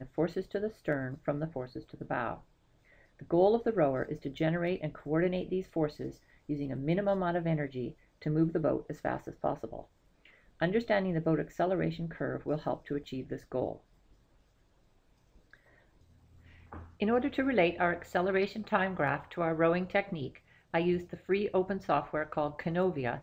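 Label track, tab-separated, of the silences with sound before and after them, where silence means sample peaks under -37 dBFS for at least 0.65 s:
2.350000	3.210000	silence
9.810000	10.620000	silence
13.750000	16.730000	silence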